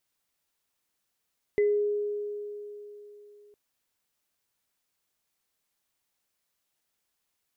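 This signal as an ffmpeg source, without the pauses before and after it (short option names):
-f lavfi -i "aevalsrc='0.106*pow(10,-3*t/3.46)*sin(2*PI*414*t)+0.0237*pow(10,-3*t/0.29)*sin(2*PI*2020*t)':d=1.96:s=44100"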